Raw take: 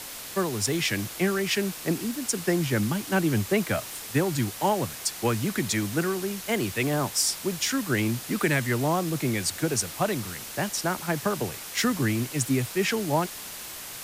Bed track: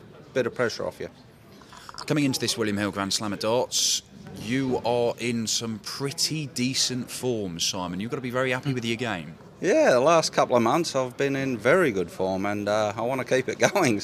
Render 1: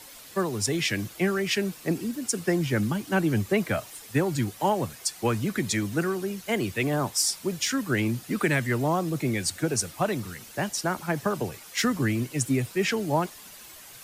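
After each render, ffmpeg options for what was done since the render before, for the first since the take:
-af "afftdn=nr=10:nf=-39"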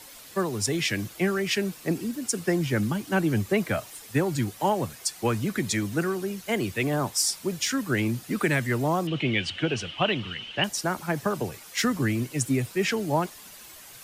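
-filter_complex "[0:a]asettb=1/sr,asplit=3[a][b][c];[a]atrim=end=9.074[d];[b]atrim=start=9.07:end=10.64,asetpts=PTS-STARTPTS,afade=t=in:d=0.004:c=qsin,afade=t=out:st=1.566:d=0.004:c=qsin,lowpass=f=3k:t=q:w=14[e];[c]atrim=start=10.636[f];[d][e]acrossfade=d=0.004:c1=hsin:c2=qsin[g];[g][f]acrossfade=d=0.004:c1=qsin:c2=hsin"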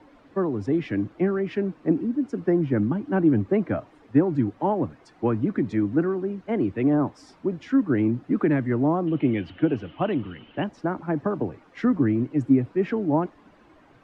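-af "lowpass=1.2k,equalizer=f=290:w=2.9:g=10.5"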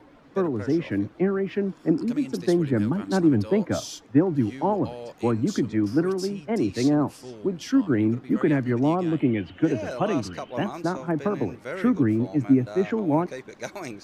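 -filter_complex "[1:a]volume=-14dB[a];[0:a][a]amix=inputs=2:normalize=0"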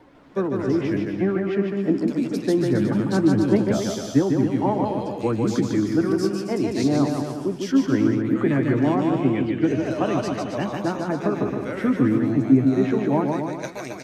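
-filter_complex "[0:a]asplit=2[a][b];[b]adelay=15,volume=-11dB[c];[a][c]amix=inputs=2:normalize=0,aecho=1:1:150|270|366|442.8|504.2:0.631|0.398|0.251|0.158|0.1"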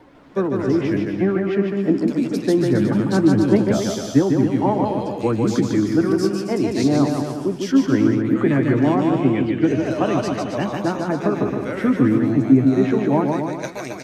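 -af "volume=3dB,alimiter=limit=-3dB:level=0:latency=1"

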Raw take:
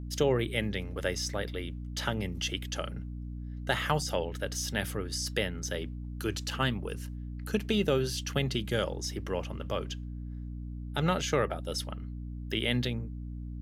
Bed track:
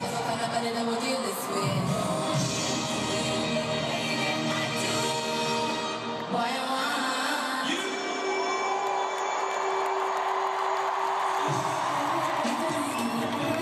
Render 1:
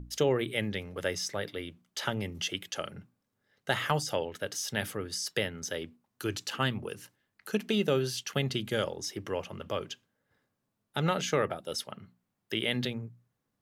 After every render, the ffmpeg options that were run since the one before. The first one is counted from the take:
-af "bandreject=f=60:t=h:w=6,bandreject=f=120:t=h:w=6,bandreject=f=180:t=h:w=6,bandreject=f=240:t=h:w=6,bandreject=f=300:t=h:w=6"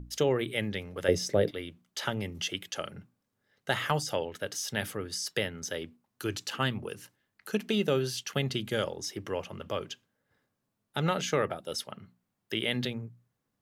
-filter_complex "[0:a]asettb=1/sr,asplit=3[a][b][c];[a]atrim=end=1.084[d];[b]atrim=start=1.08:end=1.51,asetpts=PTS-STARTPTS,afade=t=in:d=0.004:c=qsin,afade=t=out:st=0.426:d=0.004:c=qsin,lowshelf=f=730:t=q:w=1.5:g=10[e];[c]atrim=start=1.506[f];[d][e]acrossfade=d=0.004:c1=hsin:c2=qsin[g];[g][f]acrossfade=d=0.004:c1=qsin:c2=hsin"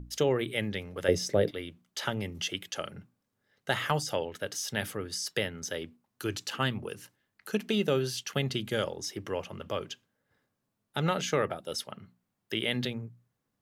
-af anull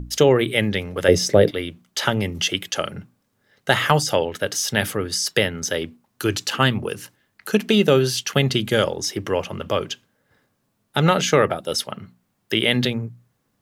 -af "volume=11.5dB,alimiter=limit=-1dB:level=0:latency=1"

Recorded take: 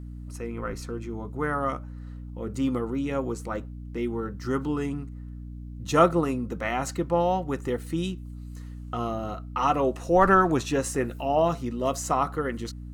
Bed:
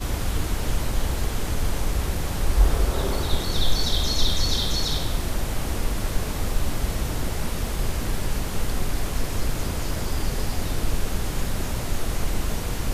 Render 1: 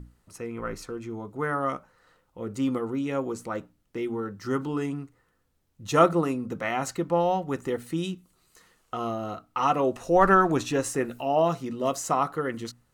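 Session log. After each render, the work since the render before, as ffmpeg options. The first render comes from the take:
-af "bandreject=f=60:t=h:w=6,bandreject=f=120:t=h:w=6,bandreject=f=180:t=h:w=6,bandreject=f=240:t=h:w=6,bandreject=f=300:t=h:w=6"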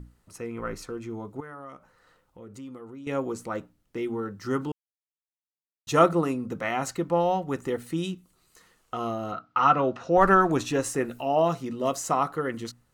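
-filter_complex "[0:a]asettb=1/sr,asplit=3[a][b][c];[a]atrim=end=1.404[d];[b]atrim=start=1.4:end=3.07,asetpts=PTS-STARTPTS,afade=t=in:d=0.004:c=qsin,afade=t=out:st=1.666:d=0.004:c=qsin,acompressor=threshold=-46dB:ratio=2.5:attack=3.2:release=140:knee=1:detection=peak[e];[c]atrim=start=3.066[f];[d][e]acrossfade=d=0.004:c1=hsin:c2=qsin[g];[g][f]acrossfade=d=0.004:c1=qsin:c2=hsin,asettb=1/sr,asplit=3[h][i][j];[h]atrim=end=9.324[k];[i]atrim=start=9.32:end=10.18,asetpts=PTS-STARTPTS,afade=t=in:d=0.004:c=qsin,afade=t=out:st=0.856:d=0.004:c=qsin,highpass=110,equalizer=f=140:t=q:w=4:g=5,equalizer=f=410:t=q:w=4:g=-3,equalizer=f=1.4k:t=q:w=4:g=10,lowpass=f=5.2k:w=0.5412,lowpass=f=5.2k:w=1.3066[l];[j]atrim=start=10.176[m];[k][l]acrossfade=d=0.004:c1=hsin:c2=qsin[n];[n][m]acrossfade=d=0.004:c1=qsin:c2=hsin,asplit=3[o][p][q];[o]atrim=end=4.72,asetpts=PTS-STARTPTS,afade=t=out:st=4.716:d=0.004:c=hsin[r];[p]atrim=start=4.72:end=5.87,asetpts=PTS-STARTPTS,volume=0[s];[q]atrim=start=5.87,asetpts=PTS-STARTPTS,afade=t=in:d=0.004:c=hsin[t];[r][s][t]concat=n=3:v=0:a=1"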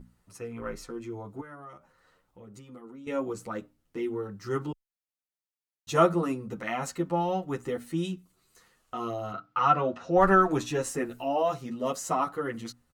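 -filter_complex "[0:a]asplit=2[a][b];[b]adelay=9,afreqshift=1[c];[a][c]amix=inputs=2:normalize=1"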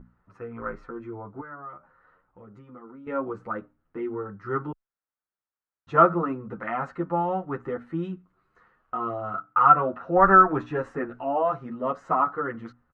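-af "lowpass=f=1.4k:t=q:w=2.4"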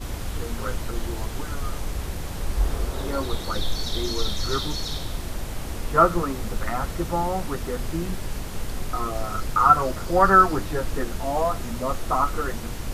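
-filter_complex "[1:a]volume=-5dB[a];[0:a][a]amix=inputs=2:normalize=0"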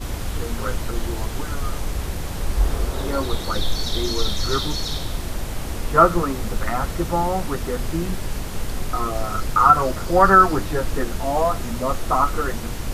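-af "volume=3.5dB,alimiter=limit=-2dB:level=0:latency=1"

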